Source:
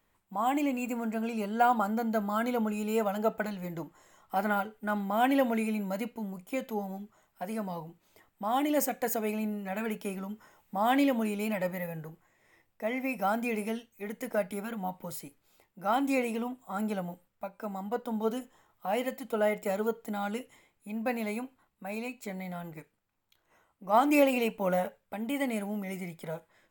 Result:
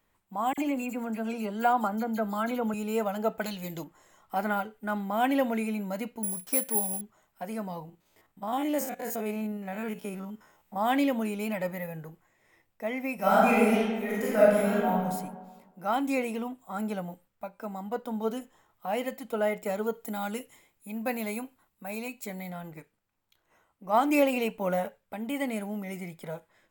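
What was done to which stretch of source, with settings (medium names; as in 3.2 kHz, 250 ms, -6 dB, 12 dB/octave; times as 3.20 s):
0.53–2.74 s: phase dispersion lows, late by 47 ms, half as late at 2.7 kHz
3.41–3.84 s: resonant high shelf 2.3 kHz +9 dB, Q 1.5
6.23–7.01 s: careless resampling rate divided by 4×, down none, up zero stuff
7.85–10.76 s: spectrogram pixelated in time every 50 ms
13.15–14.96 s: reverb throw, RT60 1.4 s, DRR -8.5 dB
19.93–22.50 s: treble shelf 6.8 kHz +9.5 dB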